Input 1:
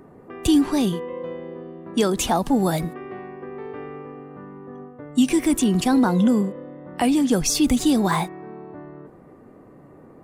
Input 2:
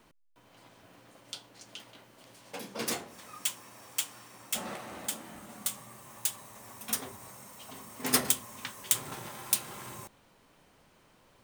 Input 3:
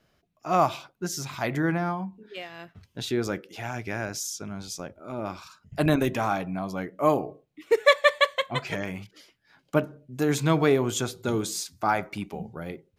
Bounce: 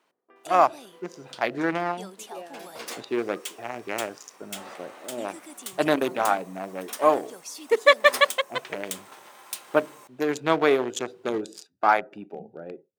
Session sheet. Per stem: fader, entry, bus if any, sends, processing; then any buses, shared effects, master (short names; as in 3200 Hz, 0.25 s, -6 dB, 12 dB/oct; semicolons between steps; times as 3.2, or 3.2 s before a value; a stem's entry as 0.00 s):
-8.5 dB, 0.00 s, no send, gate with hold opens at -36 dBFS; high shelf 5600 Hz +11 dB; auto duck -11 dB, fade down 0.30 s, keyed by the third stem
-5.5 dB, 0.00 s, no send, AGC gain up to 5 dB
-1.0 dB, 0.00 s, no send, Wiener smoothing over 41 samples; gate -50 dBFS, range -7 dB; AGC gain up to 8.5 dB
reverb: off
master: HPF 460 Hz 12 dB/oct; high shelf 6500 Hz -7 dB